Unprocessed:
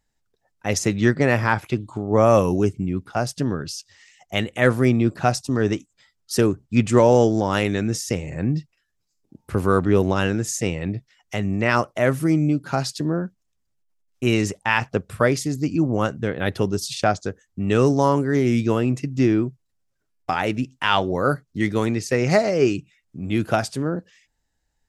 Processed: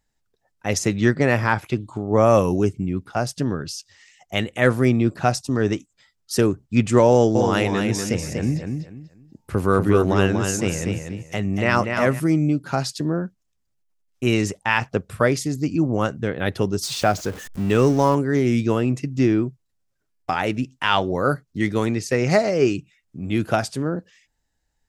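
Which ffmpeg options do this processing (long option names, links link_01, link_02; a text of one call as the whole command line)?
ffmpeg -i in.wav -filter_complex "[0:a]asettb=1/sr,asplit=3[link_01][link_02][link_03];[link_01]atrim=end=7.114[link_04];[link_02]atrim=start=7.11:end=12.2,asetpts=PTS-STARTPTS,afade=type=in:duration=0.004:curve=qsin,afade=type=out:start_time=5.086:duration=0.004:curve=qsin,aecho=1:1:241|482|723:0.531|0.138|0.0359,atrim=end_sample=224469[link_05];[link_03]atrim=start=12.196[link_06];[link_04][link_05]acrossfade=duration=0.004:curve1=hsin:curve2=qsin[link_07];[link_07][link_06]acrossfade=duration=0.004:curve1=qsin:curve2=hsin,asettb=1/sr,asplit=3[link_08][link_09][link_10];[link_08]atrim=end=16.834[link_11];[link_09]atrim=start=16.83:end=18.15,asetpts=PTS-STARTPTS,afade=type=in:duration=0.004:curve=qsin,afade=type=out:start_time=1.316:duration=0.004:curve=qsin,aeval=exprs='val(0)+0.5*0.0251*sgn(val(0))':channel_layout=same[link_12];[link_10]atrim=start=18.146[link_13];[link_11][link_12]acrossfade=duration=0.004:curve1=hsin:curve2=qsin[link_14];[link_14][link_13]acrossfade=duration=0.004:curve1=qsin:curve2=hsin" out.wav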